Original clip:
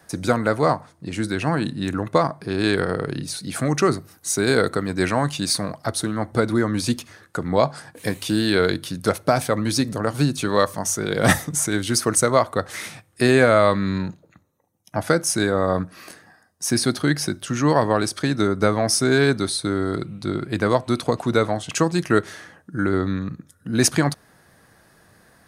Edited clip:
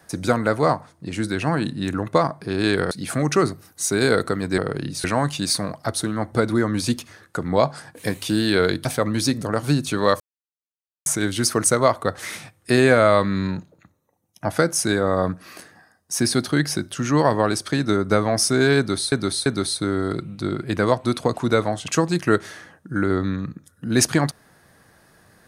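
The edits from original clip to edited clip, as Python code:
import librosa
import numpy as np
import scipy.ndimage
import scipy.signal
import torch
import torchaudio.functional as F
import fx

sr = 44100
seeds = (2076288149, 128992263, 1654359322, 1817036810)

y = fx.edit(x, sr, fx.move(start_s=2.91, length_s=0.46, to_s=5.04),
    fx.cut(start_s=8.85, length_s=0.51),
    fx.silence(start_s=10.71, length_s=0.86),
    fx.repeat(start_s=19.29, length_s=0.34, count=3), tone=tone)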